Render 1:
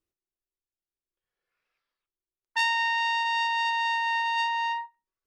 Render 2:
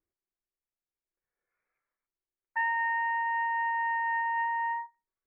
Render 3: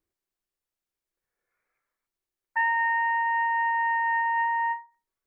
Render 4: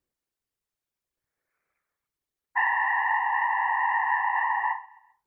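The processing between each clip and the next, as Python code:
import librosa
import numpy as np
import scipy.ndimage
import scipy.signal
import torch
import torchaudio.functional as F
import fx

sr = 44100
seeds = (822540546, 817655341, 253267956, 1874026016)

y1 = scipy.signal.sosfilt(scipy.signal.cheby1(6, 1.0, 2300.0, 'lowpass', fs=sr, output='sos'), x)
y1 = F.gain(torch.from_numpy(y1), -1.5).numpy()
y2 = fx.end_taper(y1, sr, db_per_s=200.0)
y2 = F.gain(torch.from_numpy(y2), 4.5).numpy()
y3 = fx.whisperise(y2, sr, seeds[0])
y3 = fx.echo_feedback(y3, sr, ms=131, feedback_pct=47, wet_db=-21.5)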